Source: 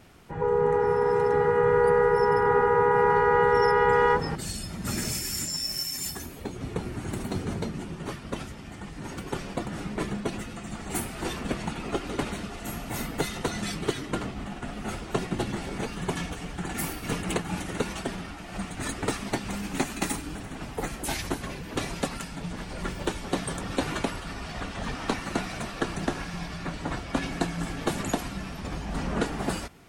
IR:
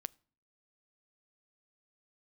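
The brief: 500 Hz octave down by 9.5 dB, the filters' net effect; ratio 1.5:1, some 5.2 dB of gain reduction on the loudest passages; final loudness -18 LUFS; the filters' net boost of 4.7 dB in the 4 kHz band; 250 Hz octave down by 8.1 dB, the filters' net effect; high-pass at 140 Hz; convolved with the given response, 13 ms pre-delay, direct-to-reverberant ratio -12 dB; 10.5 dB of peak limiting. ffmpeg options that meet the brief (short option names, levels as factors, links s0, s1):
-filter_complex "[0:a]highpass=140,equalizer=f=250:t=o:g=-8,equalizer=f=500:t=o:g=-8.5,equalizer=f=4000:t=o:g=6.5,acompressor=threshold=0.0158:ratio=1.5,alimiter=level_in=1.41:limit=0.0631:level=0:latency=1,volume=0.708,asplit=2[s0][s1];[1:a]atrim=start_sample=2205,adelay=13[s2];[s1][s2]afir=irnorm=-1:irlink=0,volume=5.62[s3];[s0][s3]amix=inputs=2:normalize=0,volume=2.24"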